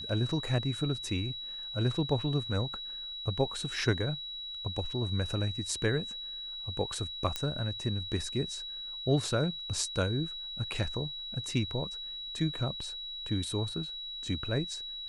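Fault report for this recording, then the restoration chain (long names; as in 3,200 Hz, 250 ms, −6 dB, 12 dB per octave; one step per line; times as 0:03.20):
whistle 3,900 Hz −38 dBFS
0:07.36: click −16 dBFS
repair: click removal
notch filter 3,900 Hz, Q 30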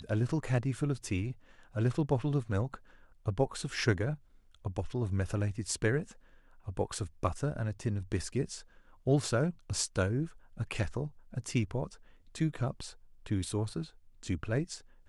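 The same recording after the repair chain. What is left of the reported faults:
none of them is left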